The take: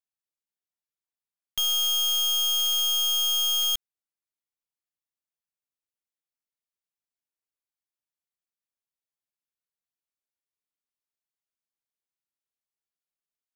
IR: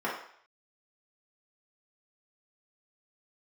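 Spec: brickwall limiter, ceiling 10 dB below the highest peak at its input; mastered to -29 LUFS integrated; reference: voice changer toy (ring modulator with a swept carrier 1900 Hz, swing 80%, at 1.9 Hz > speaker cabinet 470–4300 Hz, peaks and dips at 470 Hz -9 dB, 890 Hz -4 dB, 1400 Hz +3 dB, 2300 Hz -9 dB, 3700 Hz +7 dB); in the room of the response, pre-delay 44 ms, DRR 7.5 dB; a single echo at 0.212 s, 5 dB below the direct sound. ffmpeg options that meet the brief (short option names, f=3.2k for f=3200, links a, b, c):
-filter_complex "[0:a]alimiter=level_in=10dB:limit=-24dB:level=0:latency=1,volume=-10dB,aecho=1:1:212:0.562,asplit=2[a][b];[1:a]atrim=start_sample=2205,adelay=44[c];[b][c]afir=irnorm=-1:irlink=0,volume=-17dB[d];[a][d]amix=inputs=2:normalize=0,aeval=exprs='val(0)*sin(2*PI*1900*n/s+1900*0.8/1.9*sin(2*PI*1.9*n/s))':c=same,highpass=470,equalizer=f=470:t=q:w=4:g=-9,equalizer=f=890:t=q:w=4:g=-4,equalizer=f=1.4k:t=q:w=4:g=3,equalizer=f=2.3k:t=q:w=4:g=-9,equalizer=f=3.7k:t=q:w=4:g=7,lowpass=f=4.3k:w=0.5412,lowpass=f=4.3k:w=1.3066,volume=6dB"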